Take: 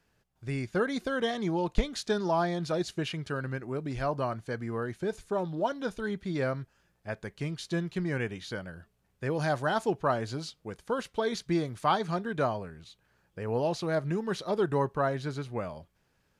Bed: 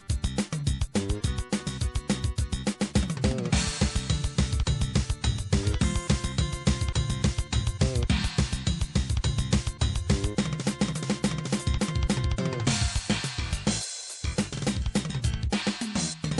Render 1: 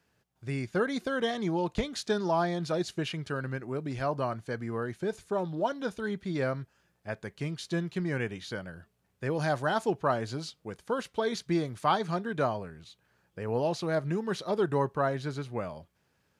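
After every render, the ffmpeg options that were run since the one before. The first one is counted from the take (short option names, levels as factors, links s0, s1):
-af "highpass=70"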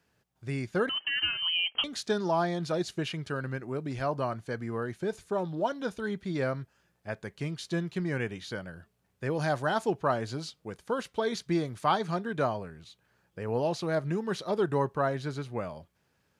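-filter_complex "[0:a]asettb=1/sr,asplit=3[s0][s1][s2];[s0]atrim=end=0.894[s3];[s1]atrim=start=0.89:end=1.84,asetpts=PTS-STARTPTS,afade=t=in:d=0.004:c=qsin,afade=t=out:st=0.946:d=0.004:c=qsin,lowpass=f=2800:t=q:w=0.5098,lowpass=f=2800:t=q:w=0.6013,lowpass=f=2800:t=q:w=0.9,lowpass=f=2800:t=q:w=2.563,afreqshift=-3300[s4];[s2]atrim=start=1.836[s5];[s3][s4]acrossfade=d=0.004:c1=hsin:c2=qsin[s6];[s6][s5]acrossfade=d=0.004:c1=qsin:c2=hsin"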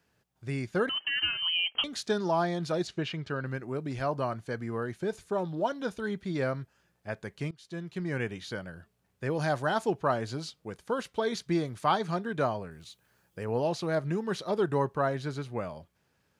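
-filter_complex "[0:a]asettb=1/sr,asplit=3[s0][s1][s2];[s0]atrim=end=2.874[s3];[s1]atrim=start=2.87:end=3.46,asetpts=PTS-STARTPTS,afade=t=in:d=0.004:c=qsin,afade=t=out:st=0.586:d=0.004:c=qsin,lowpass=4900[s4];[s2]atrim=start=3.456[s5];[s3][s4]acrossfade=d=0.004:c1=hsin:c2=qsin[s6];[s6][s5]acrossfade=d=0.004:c1=qsin:c2=hsin,asettb=1/sr,asplit=3[s7][s8][s9];[s7]atrim=end=12.714[s10];[s8]atrim=start=12.71:end=13.45,asetpts=PTS-STARTPTS,afade=t=in:d=0.004:c=qsin,afade=t=out:st=0.736:d=0.004:c=qsin,highshelf=f=7000:g=12[s11];[s9]atrim=start=13.446[s12];[s10][s11]acrossfade=d=0.004:c1=hsin:c2=qsin[s13];[s13][s12]acrossfade=d=0.004:c1=qsin:c2=hsin,asplit=2[s14][s15];[s14]atrim=end=7.51,asetpts=PTS-STARTPTS,afade=t=out:st=7.506:d=0.004:c=hsin:silence=0.0794328[s16];[s15]atrim=start=7.51,asetpts=PTS-STARTPTS,afade=t=in:d=0.7:silence=0.0794328[s17];[s16][s17]concat=n=2:v=0:a=1"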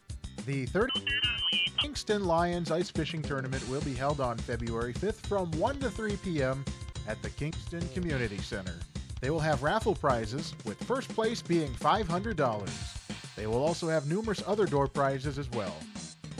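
-filter_complex "[1:a]volume=0.211[s0];[0:a][s0]amix=inputs=2:normalize=0"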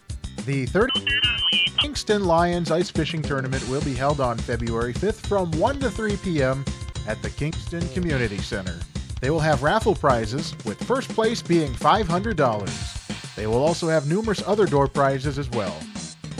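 -af "volume=2.66"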